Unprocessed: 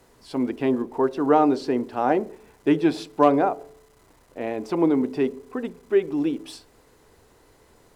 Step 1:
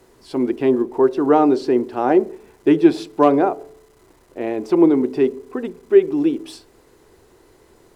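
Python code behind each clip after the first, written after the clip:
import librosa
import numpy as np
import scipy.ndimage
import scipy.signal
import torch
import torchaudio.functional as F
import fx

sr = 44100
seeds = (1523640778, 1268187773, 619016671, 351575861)

y = fx.peak_eq(x, sr, hz=360.0, db=9.5, octaves=0.33)
y = F.gain(torch.from_numpy(y), 2.0).numpy()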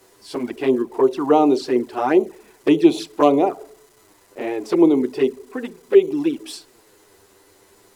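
y = fx.env_flanger(x, sr, rest_ms=10.6, full_db=-11.0)
y = fx.tilt_eq(y, sr, slope=2.0)
y = F.gain(torch.from_numpy(y), 3.0).numpy()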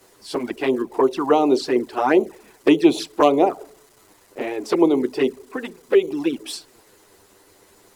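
y = fx.hpss(x, sr, part='percussive', gain_db=8)
y = F.gain(torch.from_numpy(y), -4.0).numpy()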